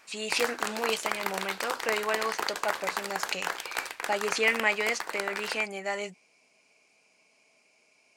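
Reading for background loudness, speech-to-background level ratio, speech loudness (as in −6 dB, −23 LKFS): −33.5 LKFS, 2.5 dB, −31.0 LKFS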